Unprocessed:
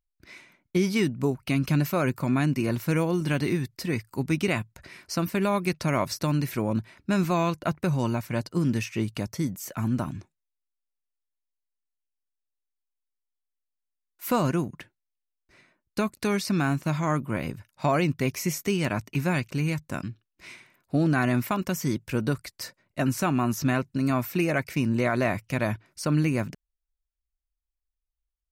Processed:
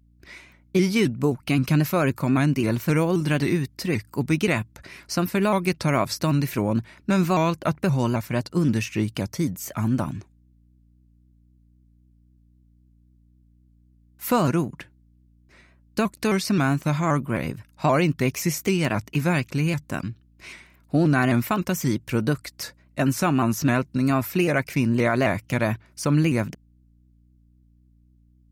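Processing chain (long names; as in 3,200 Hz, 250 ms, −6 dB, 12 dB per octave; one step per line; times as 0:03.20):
mains hum 60 Hz, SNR 33 dB
pitch modulation by a square or saw wave saw up 3.8 Hz, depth 100 cents
level +3.5 dB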